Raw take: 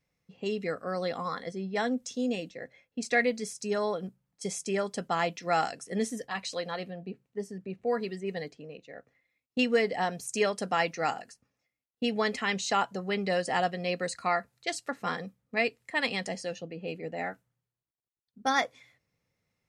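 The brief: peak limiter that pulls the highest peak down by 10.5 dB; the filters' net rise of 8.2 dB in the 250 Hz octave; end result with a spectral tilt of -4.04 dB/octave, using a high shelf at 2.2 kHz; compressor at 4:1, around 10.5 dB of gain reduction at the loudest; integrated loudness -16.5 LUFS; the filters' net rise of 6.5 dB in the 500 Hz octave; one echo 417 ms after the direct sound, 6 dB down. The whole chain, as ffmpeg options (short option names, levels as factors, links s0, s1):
-af "equalizer=f=250:t=o:g=8.5,equalizer=f=500:t=o:g=5,highshelf=f=2200:g=6.5,acompressor=threshold=0.0501:ratio=4,alimiter=limit=0.0668:level=0:latency=1,aecho=1:1:417:0.501,volume=7.08"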